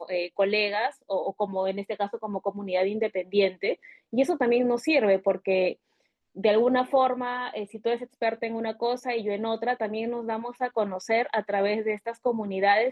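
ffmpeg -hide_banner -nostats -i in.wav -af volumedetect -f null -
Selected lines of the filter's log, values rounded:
mean_volume: -26.5 dB
max_volume: -10.8 dB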